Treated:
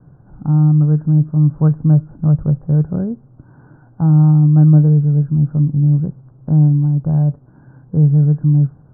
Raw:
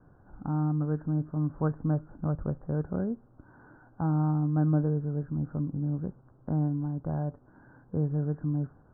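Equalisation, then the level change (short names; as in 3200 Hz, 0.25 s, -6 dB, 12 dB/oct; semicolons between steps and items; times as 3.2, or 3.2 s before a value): LPF 1000 Hz 6 dB/oct; bell 140 Hz +12.5 dB 0.66 oct; +7.0 dB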